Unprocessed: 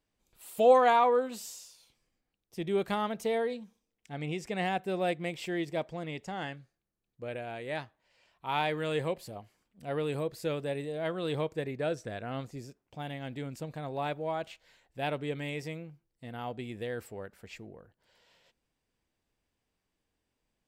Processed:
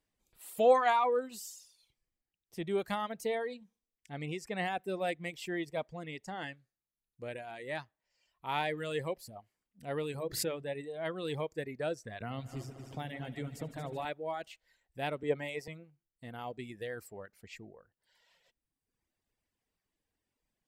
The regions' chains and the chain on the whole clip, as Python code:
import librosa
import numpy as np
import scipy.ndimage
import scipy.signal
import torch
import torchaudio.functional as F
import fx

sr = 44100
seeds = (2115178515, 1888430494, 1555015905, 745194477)

y = fx.chain(x, sr, fx.lowpass(hz=11000.0, slope=12),
    fx.high_shelf(hz=7800.0, db=6.5), at=(6.43, 7.63))
y = fx.chain(y, sr, fx.high_shelf(hz=4200.0, db=-4.0),
    fx.hum_notches(base_hz=50, count=8),
    fx.pre_swell(db_per_s=61.0), at=(10.12, 10.64))
y = fx.chain(y, sr, fx.low_shelf(hz=79.0, db=10.0),
    fx.echo_heads(ms=75, heads='all three', feedback_pct=58, wet_db=-12.0),
    fx.band_squash(depth_pct=70), at=(12.2, 14.05))
y = fx.chain(y, sr, fx.peak_eq(hz=690.0, db=10.5, octaves=1.7),
    fx.band_widen(depth_pct=70), at=(15.23, 15.68))
y = fx.peak_eq(y, sr, hz=11000.0, db=3.5, octaves=1.0)
y = fx.dereverb_blind(y, sr, rt60_s=1.2)
y = fx.peak_eq(y, sr, hz=1900.0, db=4.0, octaves=0.21)
y = y * librosa.db_to_amplitude(-2.5)